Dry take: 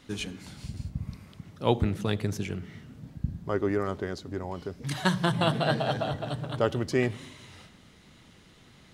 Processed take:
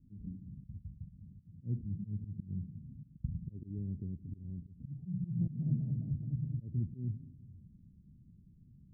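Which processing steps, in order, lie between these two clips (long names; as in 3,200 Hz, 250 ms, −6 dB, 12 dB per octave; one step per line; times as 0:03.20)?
volume swells 181 ms
inverse Chebyshev low-pass filter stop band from 1,200 Hz, stop band 80 dB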